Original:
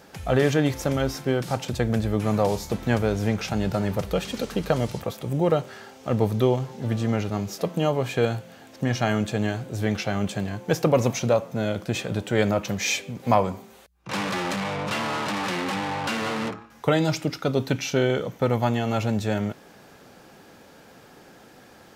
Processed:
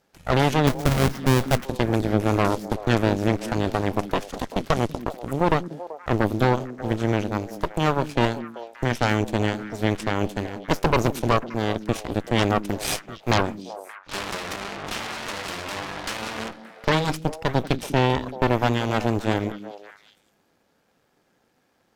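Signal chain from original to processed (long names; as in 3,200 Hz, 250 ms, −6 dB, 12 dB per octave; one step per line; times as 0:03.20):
0:00.67–0:01.66: each half-wave held at its own peak
harmonic generator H 6 −6 dB, 7 −19 dB, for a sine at −6 dBFS
echo through a band-pass that steps 192 ms, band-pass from 230 Hz, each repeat 1.4 octaves, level −8 dB
level −4.5 dB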